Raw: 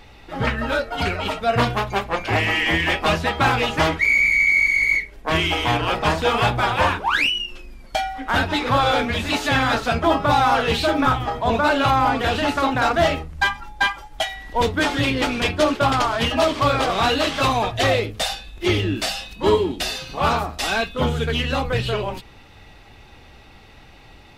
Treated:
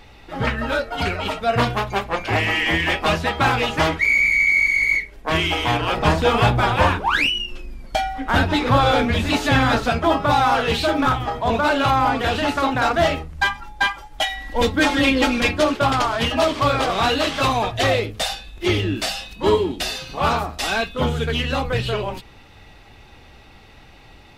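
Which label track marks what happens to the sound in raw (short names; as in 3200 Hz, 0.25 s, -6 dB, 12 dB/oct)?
5.970000	9.900000	low shelf 440 Hz +6 dB
10.530000	11.880000	hard clip -11 dBFS
14.210000	15.590000	comb 3.7 ms, depth 82%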